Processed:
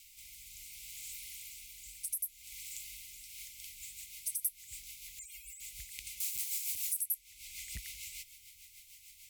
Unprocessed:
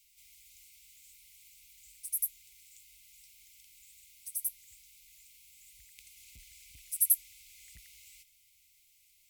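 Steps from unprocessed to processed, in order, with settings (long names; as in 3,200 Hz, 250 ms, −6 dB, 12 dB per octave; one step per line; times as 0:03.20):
0:05.19–0:05.60: expanding power law on the bin magnitudes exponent 3.5
0:06.20–0:07.01: RIAA equalisation recording
downward compressor 5 to 1, threshold −43 dBFS, peak gain reduction 22 dB
rotating-speaker cabinet horn 0.65 Hz, later 6.7 Hz, at 0:02.99
level +13 dB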